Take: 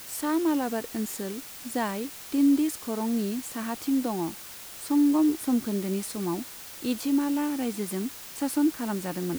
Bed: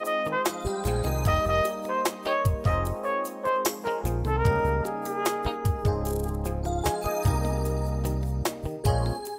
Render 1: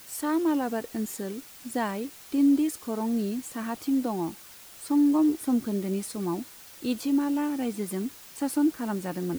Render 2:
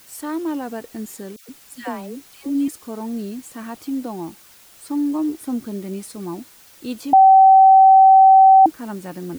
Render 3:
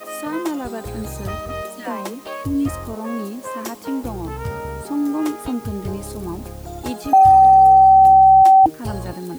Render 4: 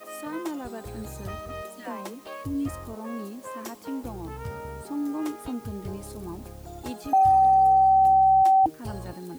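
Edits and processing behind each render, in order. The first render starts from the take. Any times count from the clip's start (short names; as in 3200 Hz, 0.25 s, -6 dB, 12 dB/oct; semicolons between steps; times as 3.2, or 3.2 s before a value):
denoiser 6 dB, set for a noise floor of -43 dBFS
1.36–2.68 dispersion lows, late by 0.13 s, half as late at 1100 Hz; 7.13–8.66 bleep 768 Hz -6 dBFS
add bed -4.5 dB
gain -8.5 dB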